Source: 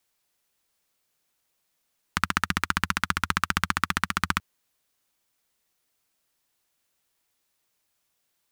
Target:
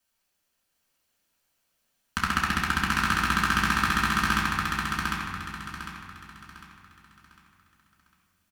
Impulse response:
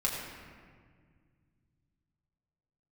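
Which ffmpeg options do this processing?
-filter_complex "[0:a]aecho=1:1:752|1504|2256|3008|3760:0.708|0.248|0.0867|0.0304|0.0106[s0];[1:a]atrim=start_sample=2205,asetrate=52920,aresample=44100[s1];[s0][s1]afir=irnorm=-1:irlink=0,volume=0.596"

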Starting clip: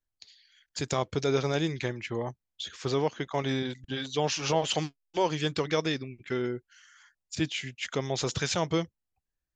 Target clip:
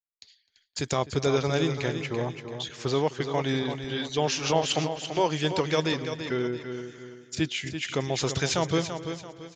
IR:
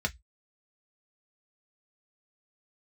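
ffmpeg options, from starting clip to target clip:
-filter_complex "[0:a]asplit=2[s0][s1];[s1]aecho=0:1:337|674|1011|1348:0.376|0.132|0.046|0.0161[s2];[s0][s2]amix=inputs=2:normalize=0,agate=range=0.0224:threshold=0.00282:ratio=3:detection=peak,asplit=2[s3][s4];[s4]adelay=256,lowpass=f=2100:p=1,volume=0.141,asplit=2[s5][s6];[s6]adelay=256,lowpass=f=2100:p=1,volume=0.4,asplit=2[s7][s8];[s8]adelay=256,lowpass=f=2100:p=1,volume=0.4[s9];[s5][s7][s9]amix=inputs=3:normalize=0[s10];[s3][s10]amix=inputs=2:normalize=0,volume=1.26"

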